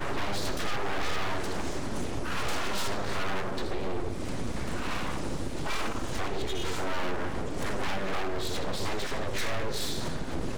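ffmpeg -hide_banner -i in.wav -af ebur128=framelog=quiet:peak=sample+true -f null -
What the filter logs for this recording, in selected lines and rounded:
Integrated loudness:
  I:         -33.3 LUFS
  Threshold: -43.3 LUFS
Loudness range:
  LRA:         1.4 LU
  Threshold: -53.4 LUFS
  LRA low:   -34.1 LUFS
  LRA high:  -32.8 LUFS
Sample peak:
  Peak:      -23.0 dBFS
True peak:
  Peak:      -22.1 dBFS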